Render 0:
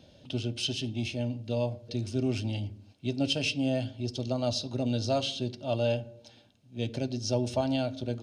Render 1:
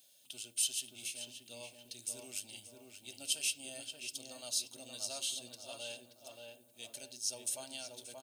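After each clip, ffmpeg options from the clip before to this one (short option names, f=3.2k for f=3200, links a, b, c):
-filter_complex "[0:a]aderivative,asplit=2[a][b];[b]adelay=579,lowpass=f=1.8k:p=1,volume=-3dB,asplit=2[c][d];[d]adelay=579,lowpass=f=1.8k:p=1,volume=0.48,asplit=2[e][f];[f]adelay=579,lowpass=f=1.8k:p=1,volume=0.48,asplit=2[g][h];[h]adelay=579,lowpass=f=1.8k:p=1,volume=0.48,asplit=2[i][j];[j]adelay=579,lowpass=f=1.8k:p=1,volume=0.48,asplit=2[k][l];[l]adelay=579,lowpass=f=1.8k:p=1,volume=0.48[m];[a][c][e][g][i][k][m]amix=inputs=7:normalize=0,aexciter=amount=9.4:drive=1.4:freq=7.5k"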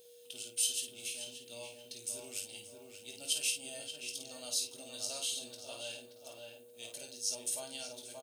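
-filter_complex "[0:a]aeval=exprs='val(0)+0.00141*sin(2*PI*480*n/s)':c=same,asplit=2[a][b];[b]aecho=0:1:20|52:0.422|0.473[c];[a][c]amix=inputs=2:normalize=0"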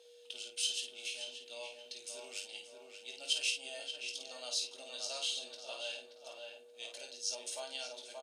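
-af "highpass=550,lowpass=4.9k,volume=3.5dB"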